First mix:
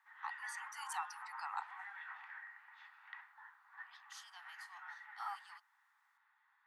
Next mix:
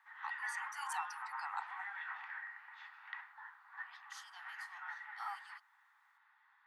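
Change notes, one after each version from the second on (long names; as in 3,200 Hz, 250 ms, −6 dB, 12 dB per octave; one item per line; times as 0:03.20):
background +5.0 dB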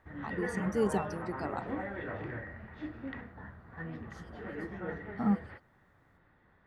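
second voice: add four-pole ladder high-pass 660 Hz, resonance 45%
master: remove Butterworth high-pass 820 Hz 96 dB per octave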